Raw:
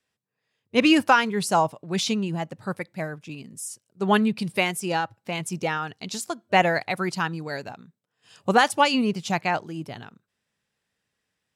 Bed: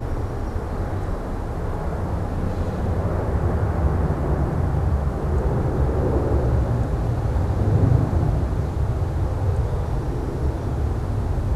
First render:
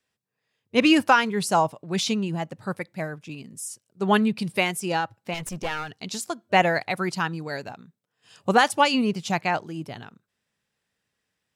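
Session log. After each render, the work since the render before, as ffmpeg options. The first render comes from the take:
-filter_complex "[0:a]asettb=1/sr,asplit=3[s0][s1][s2];[s0]atrim=end=5.344[s3];[s1]atrim=start=5.34:end=5.92,asetpts=PTS-STARTPTS,afade=t=in:d=0.004:c=qsin,afade=t=out:st=0.576:d=0.004:c=qsin,aeval=exprs='clip(val(0),-1,0.02)':c=same[s4];[s2]atrim=start=5.916[s5];[s3][s4]acrossfade=d=0.004:c1=hsin:c2=qsin[s6];[s6][s5]acrossfade=d=0.004:c1=qsin:c2=hsin"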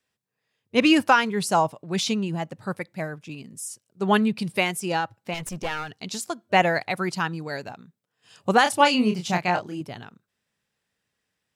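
-filter_complex "[0:a]asettb=1/sr,asplit=3[s0][s1][s2];[s0]atrim=end=8.634[s3];[s1]atrim=start=8.63:end=9.81,asetpts=PTS-STARTPTS,afade=t=in:d=0.004:c=qsin,afade=t=out:st=1.176:d=0.004:c=qsin,asplit=2[s4][s5];[s5]adelay=28,volume=0.562[s6];[s4][s6]amix=inputs=2:normalize=0,atrim=end_sample=52038[s7];[s2]atrim=start=9.806[s8];[s3][s7]acrossfade=d=0.004:c1=hsin:c2=qsin[s9];[s9][s8]acrossfade=d=0.004:c1=qsin:c2=hsin"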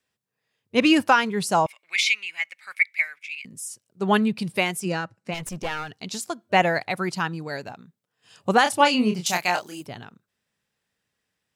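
-filter_complex "[0:a]asettb=1/sr,asplit=3[s0][s1][s2];[s0]atrim=end=1.664[s3];[s1]atrim=start=1.66:end=3.45,asetpts=PTS-STARTPTS,afade=t=in:d=0.004:c=qsin,afade=t=out:st=1.786:d=0.004:c=qsin,highpass=f=2200:t=q:w=16[s4];[s2]atrim=start=3.446[s5];[s3][s4]acrossfade=d=0.004:c1=hsin:c2=qsin[s6];[s6][s5]acrossfade=d=0.004:c1=qsin:c2=hsin,asplit=3[s7][s8][s9];[s7]afade=t=out:st=4.84:d=0.02[s10];[s8]highpass=130,equalizer=f=180:t=q:w=4:g=7,equalizer=f=830:t=q:w=4:g=-9,equalizer=f=3400:t=q:w=4:g=-9,lowpass=f=9900:w=0.5412,lowpass=f=9900:w=1.3066,afade=t=in:st=4.84:d=0.02,afade=t=out:st=5.3:d=0.02[s11];[s9]afade=t=in:st=5.3:d=0.02[s12];[s10][s11][s12]amix=inputs=3:normalize=0,asettb=1/sr,asplit=3[s13][s14][s15];[s13]atrim=end=9.264[s16];[s14]atrim=start=9.26:end=9.86,asetpts=PTS-STARTPTS,afade=t=in:d=0.004:c=qsin,afade=t=out:st=0.596:d=0.004:c=qsin,aemphasis=mode=production:type=riaa[s17];[s15]atrim=start=9.856[s18];[s16][s17]acrossfade=d=0.004:c1=hsin:c2=qsin[s19];[s19][s18]acrossfade=d=0.004:c1=qsin:c2=hsin"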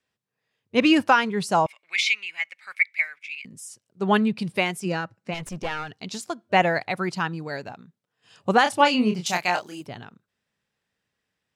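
-af "highshelf=f=8800:g=-11.5"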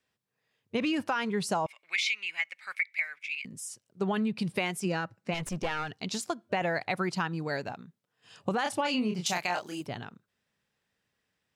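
-af "alimiter=limit=0.2:level=0:latency=1:release=12,acompressor=threshold=0.0501:ratio=6"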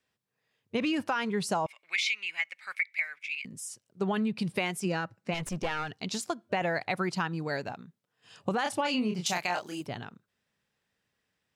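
-af anull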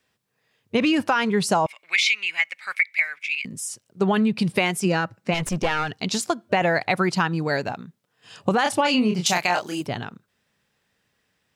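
-af "volume=2.82"

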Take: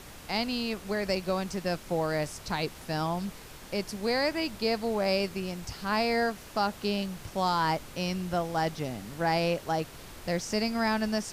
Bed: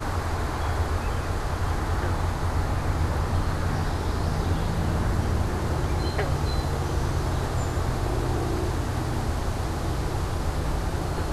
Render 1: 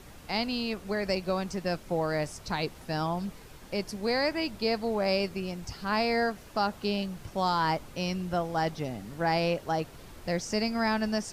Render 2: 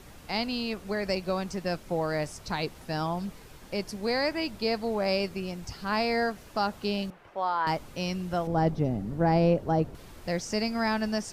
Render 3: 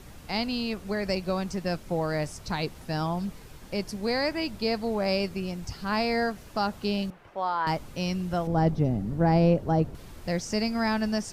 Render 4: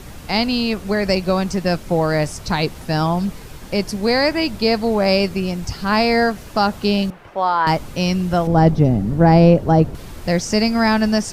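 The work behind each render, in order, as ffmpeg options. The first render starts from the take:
-af "afftdn=nr=6:nf=-47"
-filter_complex "[0:a]asettb=1/sr,asplit=3[s0][s1][s2];[s0]atrim=end=7.104[s3];[s1]atrim=start=7.1:end=7.67,asetpts=PTS-STARTPTS,afade=t=in:d=0.004:c=qsin,afade=t=out:st=0.566:d=0.004:c=qsin,acrossover=split=390 2700:gain=0.112 1 0.0891[s4][s5][s6];[s4][s5][s6]amix=inputs=3:normalize=0[s7];[s2]atrim=start=7.666[s8];[s3][s7]acrossfade=d=0.004:c1=hsin:c2=qsin[s9];[s9][s8]acrossfade=d=0.004:c1=qsin:c2=hsin,asettb=1/sr,asplit=3[s10][s11][s12];[s10]atrim=end=8.474[s13];[s11]atrim=start=8.47:end=9.95,asetpts=PTS-STARTPTS,afade=t=in:d=0.004:c=qsin,afade=t=out:st=1.476:d=0.004:c=qsin,tiltshelf=f=920:g=9[s14];[s12]atrim=start=9.946[s15];[s13][s14]acrossfade=d=0.004:c1=hsin:c2=qsin[s16];[s16][s15]acrossfade=d=0.004:c1=qsin:c2=hsin"
-af "bass=f=250:g=4,treble=f=4000:g=1"
-af "volume=3.35,alimiter=limit=0.891:level=0:latency=1"

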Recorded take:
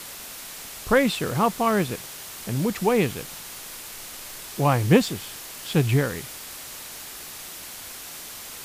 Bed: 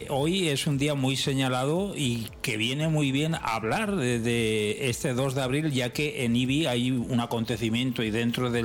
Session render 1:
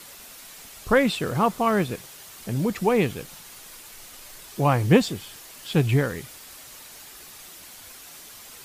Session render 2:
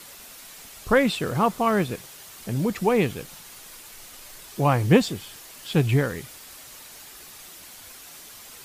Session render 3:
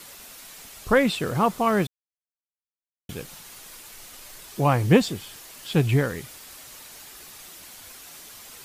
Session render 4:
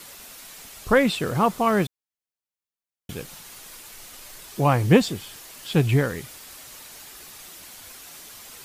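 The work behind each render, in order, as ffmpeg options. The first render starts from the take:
-af "afftdn=nr=7:nf=-39"
-af anull
-filter_complex "[0:a]asplit=3[s0][s1][s2];[s0]atrim=end=1.87,asetpts=PTS-STARTPTS,afade=t=out:st=1.866:d=0.004:c=hsin[s3];[s1]atrim=start=1.87:end=3.09,asetpts=PTS-STARTPTS,volume=0[s4];[s2]atrim=start=3.09,asetpts=PTS-STARTPTS,afade=t=in:d=0.004:c=hsin[s5];[s3][s4][s5]concat=n=3:v=0:a=1"
-af "volume=1.12"

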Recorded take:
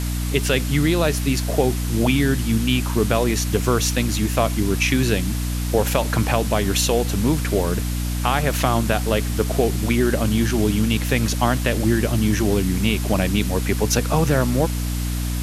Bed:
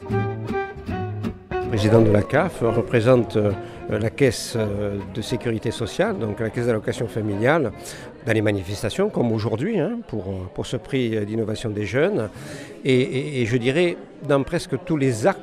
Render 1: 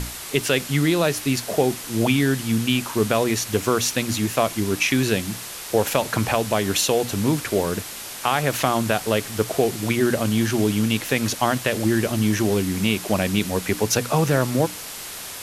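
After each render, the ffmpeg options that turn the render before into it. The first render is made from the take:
-af "bandreject=f=60:t=h:w=6,bandreject=f=120:t=h:w=6,bandreject=f=180:t=h:w=6,bandreject=f=240:t=h:w=6,bandreject=f=300:t=h:w=6"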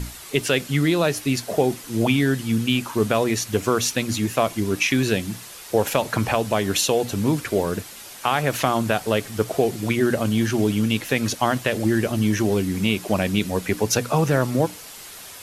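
-af "afftdn=nr=7:nf=-35"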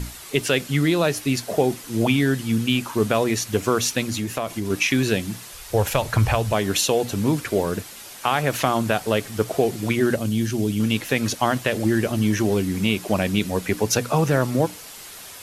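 -filter_complex "[0:a]asettb=1/sr,asplit=3[s0][s1][s2];[s0]atrim=end=4.054[s3];[s1]atrim=start=4.05:end=4.7,asetpts=PTS-STARTPTS,afade=t=in:d=0.004:c=qsin,afade=t=out:st=0.646:d=0.004:c=qsin,acompressor=threshold=0.0794:ratio=3:attack=3.2:release=140:knee=1:detection=peak[s4];[s2]atrim=start=4.696[s5];[s3][s4]acrossfade=d=0.004:c1=hsin:c2=qsin[s6];[s6][s5]acrossfade=d=0.004:c1=qsin:c2=hsin,asplit=3[s7][s8][s9];[s7]afade=t=out:st=5.52:d=0.02[s10];[s8]asubboost=boost=9:cutoff=80,afade=t=in:st=5.52:d=0.02,afade=t=out:st=6.52:d=0.02[s11];[s9]afade=t=in:st=6.52:d=0.02[s12];[s10][s11][s12]amix=inputs=3:normalize=0,asettb=1/sr,asplit=3[s13][s14][s15];[s13]atrim=end=10.164[s16];[s14]atrim=start=10.16:end=10.8,asetpts=PTS-STARTPTS,afade=t=in:d=0.004:c=qsin,afade=t=out:st=0.636:d=0.004:c=qsin,equalizer=f=1100:w=0.48:g=-9.5[s17];[s15]atrim=start=10.796[s18];[s16][s17]acrossfade=d=0.004:c1=hsin:c2=qsin[s19];[s19][s18]acrossfade=d=0.004:c1=qsin:c2=hsin"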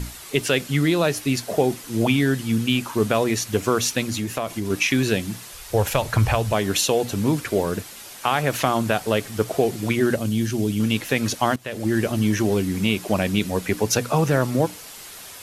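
-filter_complex "[0:a]asplit=2[s0][s1];[s0]atrim=end=11.56,asetpts=PTS-STARTPTS,afade=t=out:st=11.556:d=0.004:c=hsin:silence=0.1[s2];[s1]atrim=start=11.56,asetpts=PTS-STARTPTS,afade=t=in:d=0.43:silence=0.1[s3];[s2][s3]concat=n=2:v=0:a=1"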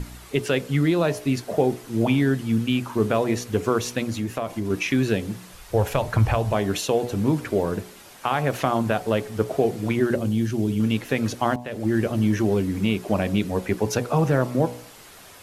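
-af "highshelf=f=2200:g=-9.5,bandreject=f=60.81:t=h:w=4,bandreject=f=121.62:t=h:w=4,bandreject=f=182.43:t=h:w=4,bandreject=f=243.24:t=h:w=4,bandreject=f=304.05:t=h:w=4,bandreject=f=364.86:t=h:w=4,bandreject=f=425.67:t=h:w=4,bandreject=f=486.48:t=h:w=4,bandreject=f=547.29:t=h:w=4,bandreject=f=608.1:t=h:w=4,bandreject=f=668.91:t=h:w=4,bandreject=f=729.72:t=h:w=4,bandreject=f=790.53:t=h:w=4,bandreject=f=851.34:t=h:w=4,bandreject=f=912.15:t=h:w=4,bandreject=f=972.96:t=h:w=4,bandreject=f=1033.77:t=h:w=4,bandreject=f=1094.58:t=h:w=4"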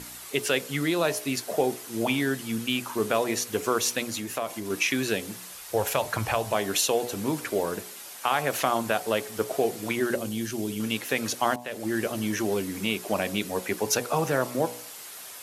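-af "highpass=f=500:p=1,aemphasis=mode=production:type=cd"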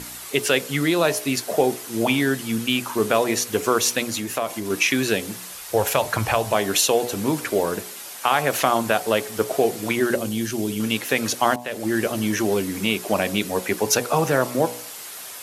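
-af "volume=1.88"

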